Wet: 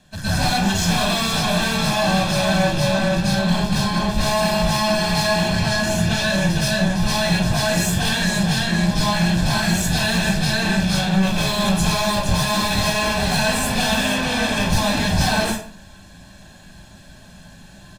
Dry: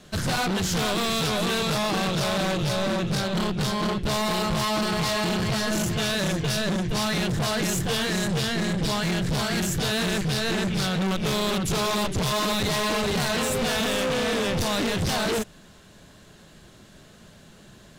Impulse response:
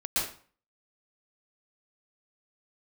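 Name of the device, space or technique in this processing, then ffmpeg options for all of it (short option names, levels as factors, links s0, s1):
microphone above a desk: -filter_complex "[0:a]asettb=1/sr,asplit=3[s0][s1][s2];[s0]atrim=end=5.474[s3];[s1]atrim=start=5.47:end=6.41,asetpts=PTS-STARTPTS,afade=t=in:d=0.004:c=qsin,afade=t=out:st=0.936:d=0.004:c=qsin,highshelf=f=8000:g=-5[s4];[s2]atrim=start=6.406[s5];[s3][s4]acrossfade=d=0.004:c1=hsin:c2=qsin[s6];[s6][s5]acrossfade=d=0.004:c1=qsin:c2=hsin,aecho=1:1:1.2:0.65[s7];[1:a]atrim=start_sample=2205[s8];[s7][s8]afir=irnorm=-1:irlink=0,volume=0.631"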